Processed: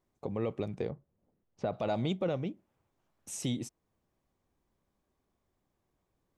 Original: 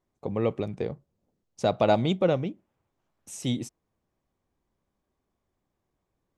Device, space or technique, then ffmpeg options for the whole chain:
stacked limiters: -filter_complex "[0:a]asettb=1/sr,asplit=3[a][b][c];[a]atrim=end=0.904[d];[b]atrim=start=0.9:end=1.73,asetpts=PTS-STARTPTS,afade=t=in:d=0.004:c=qsin,afade=t=out:st=0.826:d=0.004:c=qsin,lowpass=2.3k[e];[c]atrim=start=1.726[f];[d][e]acrossfade=d=0.004:c1=hsin:c2=qsin[g];[g][f]acrossfade=d=0.004:c1=qsin:c2=hsin,alimiter=limit=-15.5dB:level=0:latency=1:release=11,alimiter=limit=-22.5dB:level=0:latency=1:release=401"

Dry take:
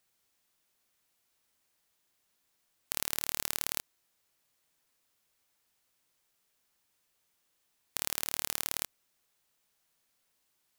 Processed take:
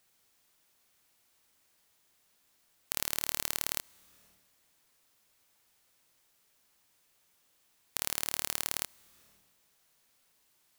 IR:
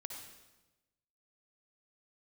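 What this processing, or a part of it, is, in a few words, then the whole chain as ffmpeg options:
ducked reverb: -filter_complex "[0:a]asplit=3[a][b][c];[1:a]atrim=start_sample=2205[d];[b][d]afir=irnorm=-1:irlink=0[e];[c]apad=whole_len=475838[f];[e][f]sidechaincompress=threshold=-49dB:ratio=10:attack=10:release=282,volume=3dB[g];[a][g]amix=inputs=2:normalize=0"

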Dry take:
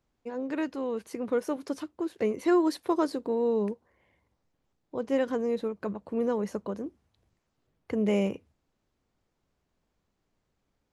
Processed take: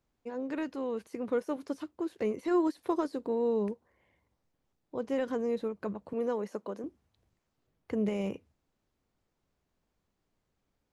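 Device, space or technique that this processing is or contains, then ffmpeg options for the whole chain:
de-esser from a sidechain: -filter_complex "[0:a]asettb=1/sr,asplit=3[a][b][c];[a]atrim=end=6.134[d];[b]atrim=start=6.13:end=6.84,asetpts=PTS-STARTPTS,afade=t=in:d=0.004:c=qsin,afade=t=out:st=0.706:d=0.004:c=qsin,highpass=260[e];[c]atrim=start=6.836[f];[d][e]acrossfade=d=0.004:c1=hsin:c2=qsin[g];[g][f]acrossfade=d=0.004:c1=qsin:c2=hsin,asplit=2[h][i];[i]highpass=6.6k,apad=whole_len=481804[j];[h][j]sidechaincompress=threshold=-58dB:ratio=12:attack=4.4:release=22,volume=-2.5dB"

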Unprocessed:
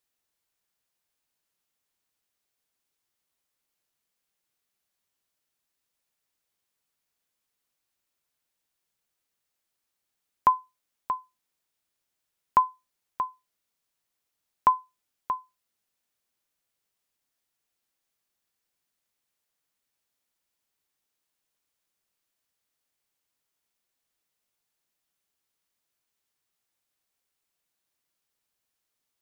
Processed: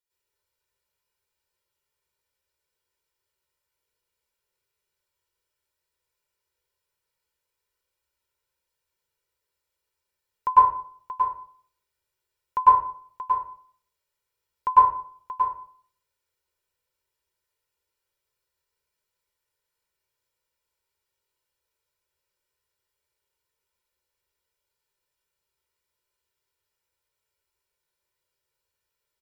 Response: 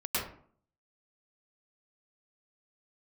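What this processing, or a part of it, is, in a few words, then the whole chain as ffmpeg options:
microphone above a desk: -filter_complex "[0:a]aecho=1:1:2.1:0.81[a];[1:a]atrim=start_sample=2205[b];[a][b]afir=irnorm=-1:irlink=0,volume=-7.5dB"

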